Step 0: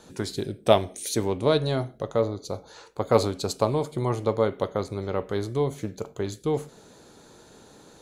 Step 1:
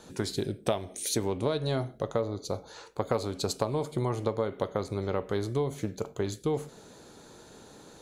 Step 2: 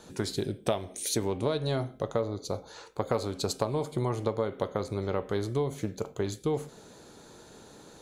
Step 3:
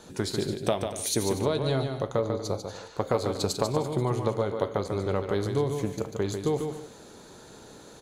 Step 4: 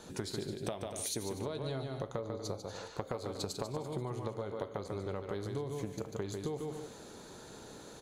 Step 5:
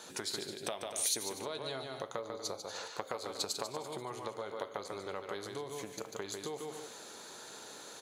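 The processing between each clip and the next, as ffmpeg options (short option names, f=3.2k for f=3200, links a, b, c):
-af "acompressor=threshold=-24dB:ratio=12"
-af "bandreject=f=260.7:t=h:w=4,bandreject=f=521.4:t=h:w=4,bandreject=f=782.1:t=h:w=4,bandreject=f=1.0428k:t=h:w=4,bandreject=f=1.3035k:t=h:w=4,bandreject=f=1.5642k:t=h:w=4,bandreject=f=1.8249k:t=h:w=4,bandreject=f=2.0856k:t=h:w=4,bandreject=f=2.3463k:t=h:w=4,bandreject=f=2.607k:t=h:w=4,bandreject=f=2.8677k:t=h:w=4,bandreject=f=3.1284k:t=h:w=4,bandreject=f=3.3891k:t=h:w=4,bandreject=f=3.6498k:t=h:w=4"
-af "aecho=1:1:145|240|306:0.473|0.168|0.106,volume=2dB"
-af "acompressor=threshold=-33dB:ratio=6,volume=-2dB"
-af "highpass=f=1.1k:p=1,volume=6dB"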